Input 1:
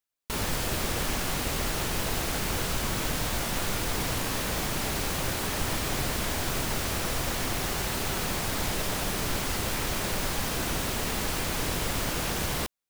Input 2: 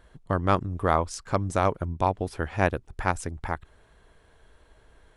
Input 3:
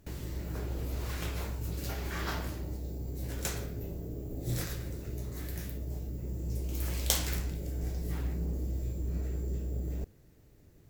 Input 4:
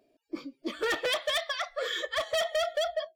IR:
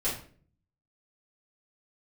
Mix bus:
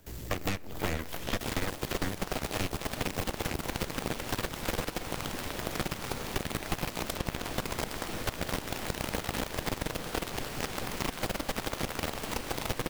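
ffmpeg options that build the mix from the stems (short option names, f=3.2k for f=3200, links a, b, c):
-filter_complex "[0:a]adelay=1100,volume=-2.5dB,asplit=2[a][b];[b]volume=-8dB[c];[1:a]lowshelf=f=480:g=-11,dynaudnorm=f=240:g=3:m=11.5dB,aeval=exprs='abs(val(0))':c=same,volume=-3.5dB,asplit=2[d][e];[e]volume=-15.5dB[f];[2:a]highshelf=f=4.4k:g=8.5,volume=-0.5dB[g];[3:a]alimiter=level_in=5.5dB:limit=-24dB:level=0:latency=1,volume=-5.5dB,volume=-5dB[h];[4:a]atrim=start_sample=2205[i];[c][f]amix=inputs=2:normalize=0[j];[j][i]afir=irnorm=-1:irlink=0[k];[a][d][g][h][k]amix=inputs=5:normalize=0,acrossover=split=120|850|1800|3900[l][m][n][o][p];[l]acompressor=threshold=-30dB:ratio=4[q];[m]acompressor=threshold=-33dB:ratio=4[r];[n]acompressor=threshold=-48dB:ratio=4[s];[o]acompressor=threshold=-44dB:ratio=4[t];[p]acompressor=threshold=-46dB:ratio=4[u];[q][r][s][t][u]amix=inputs=5:normalize=0,aeval=exprs='0.15*(cos(1*acos(clip(val(0)/0.15,-1,1)))-cos(1*PI/2))+0.0531*(cos(2*acos(clip(val(0)/0.15,-1,1)))-cos(2*PI/2))+0.0473*(cos(6*acos(clip(val(0)/0.15,-1,1)))-cos(6*PI/2))+0.0422*(cos(7*acos(clip(val(0)/0.15,-1,1)))-cos(7*PI/2))+0.0422*(cos(8*acos(clip(val(0)/0.15,-1,1)))-cos(8*PI/2))':c=same,acompressor=threshold=-27dB:ratio=6"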